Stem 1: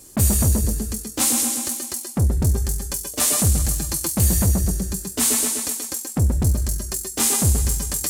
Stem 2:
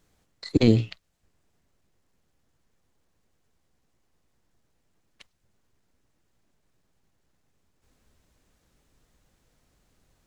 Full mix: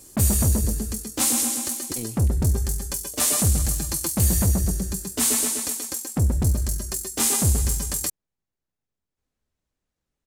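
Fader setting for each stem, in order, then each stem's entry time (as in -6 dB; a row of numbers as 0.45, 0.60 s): -2.0, -16.0 dB; 0.00, 1.35 s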